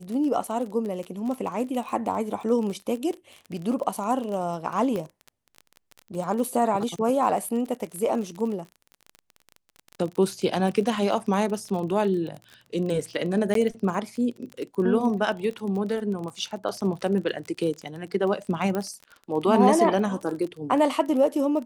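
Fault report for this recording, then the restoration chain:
crackle 30 per s -31 dBFS
4.96 s: pop -19 dBFS
13.54–13.55 s: dropout 13 ms
18.75 s: pop -16 dBFS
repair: de-click; interpolate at 13.54 s, 13 ms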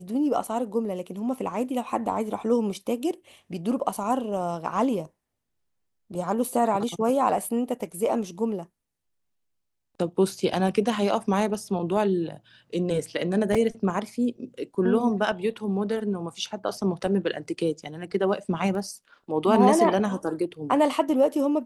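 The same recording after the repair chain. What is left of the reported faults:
18.75 s: pop

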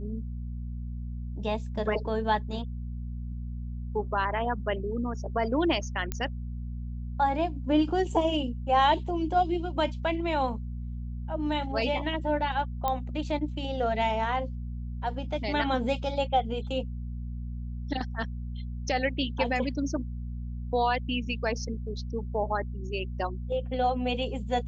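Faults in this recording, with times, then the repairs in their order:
hum 60 Hz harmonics 4 -35 dBFS
6.12 s: pop -15 dBFS
12.88 s: pop -15 dBFS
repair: de-click; de-hum 60 Hz, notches 4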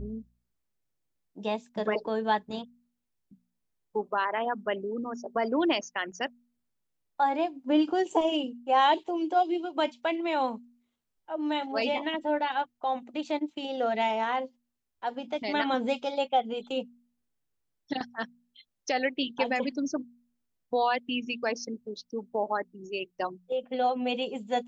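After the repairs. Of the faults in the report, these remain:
12.88 s: pop

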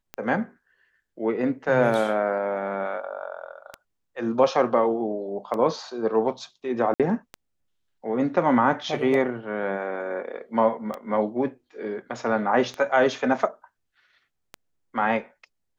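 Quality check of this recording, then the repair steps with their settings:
tick 33 1/3 rpm -18 dBFS
6.94–7.00 s: dropout 57 ms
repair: de-click; interpolate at 6.94 s, 57 ms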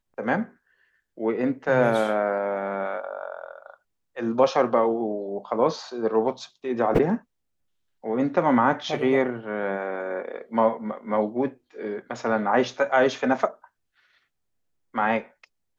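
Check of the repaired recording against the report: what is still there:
nothing left

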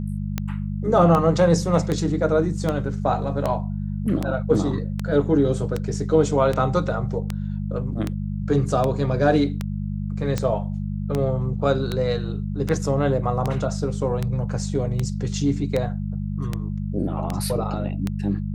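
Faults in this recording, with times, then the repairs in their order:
hum 50 Hz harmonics 4 -27 dBFS
tick 78 rpm -11 dBFS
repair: de-click; de-hum 50 Hz, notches 4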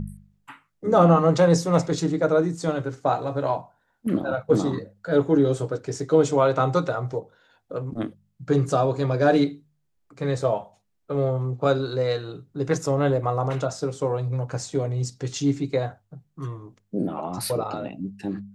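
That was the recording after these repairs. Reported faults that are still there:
nothing left

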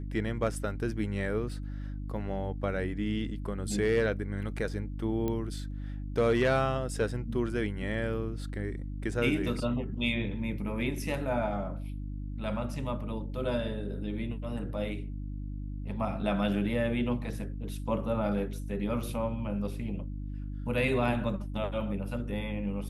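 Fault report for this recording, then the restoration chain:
hum 50 Hz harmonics 6 -37 dBFS
5.28 s: pop -20 dBFS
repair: de-click; de-hum 50 Hz, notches 6

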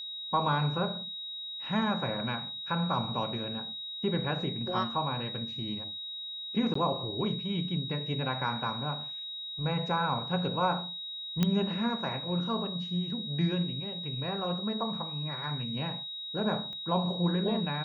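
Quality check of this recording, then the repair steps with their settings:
whine 3.8 kHz -37 dBFS
6.74–6.75 s: dropout 14 ms
11.43 s: pop -13 dBFS
16.73 s: pop -33 dBFS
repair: de-click; band-stop 3.8 kHz, Q 30; interpolate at 6.74 s, 14 ms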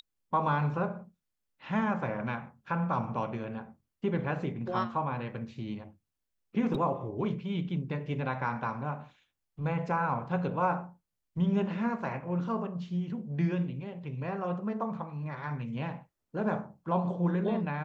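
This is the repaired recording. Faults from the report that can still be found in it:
16.73 s: pop

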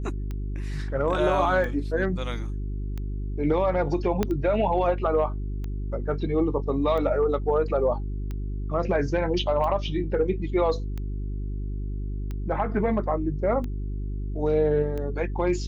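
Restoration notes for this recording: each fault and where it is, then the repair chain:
hum 50 Hz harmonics 8 -30 dBFS
tick 45 rpm -22 dBFS
4.23 s: pop -11 dBFS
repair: de-click; de-hum 50 Hz, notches 8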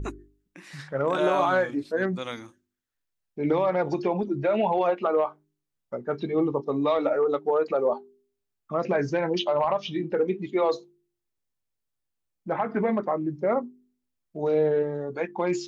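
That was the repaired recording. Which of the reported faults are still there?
4.23 s: pop

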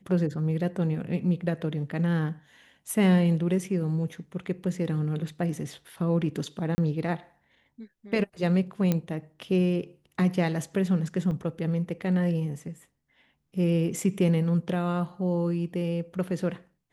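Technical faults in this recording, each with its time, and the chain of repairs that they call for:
6.75–6.78 s: dropout 30 ms
8.92 s: pop -12 dBFS
11.31 s: dropout 4.5 ms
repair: de-click; interpolate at 6.75 s, 30 ms; interpolate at 11.31 s, 4.5 ms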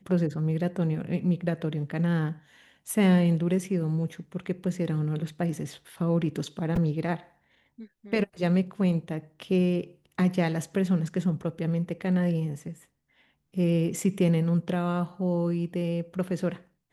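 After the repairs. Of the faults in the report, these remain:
8.92 s: pop

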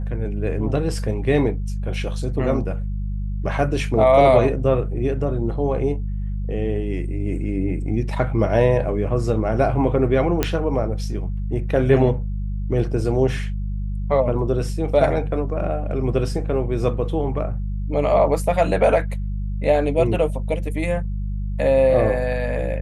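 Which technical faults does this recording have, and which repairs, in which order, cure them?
hum 50 Hz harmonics 4 -25 dBFS
10.43 s: pop -4 dBFS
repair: de-click; de-hum 50 Hz, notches 4

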